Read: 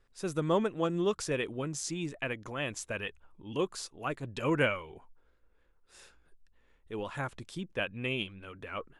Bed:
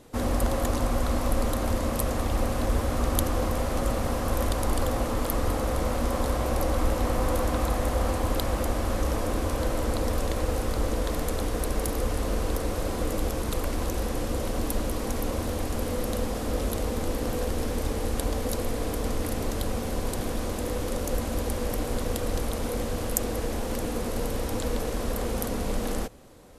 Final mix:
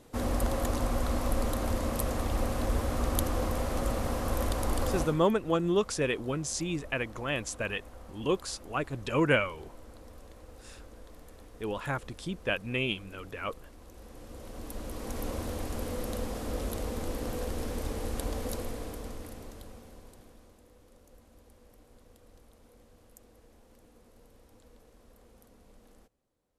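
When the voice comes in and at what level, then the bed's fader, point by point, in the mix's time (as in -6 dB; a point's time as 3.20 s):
4.70 s, +3.0 dB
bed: 5.01 s -4 dB
5.28 s -23.5 dB
13.82 s -23.5 dB
15.24 s -6 dB
18.51 s -6 dB
20.68 s -29.5 dB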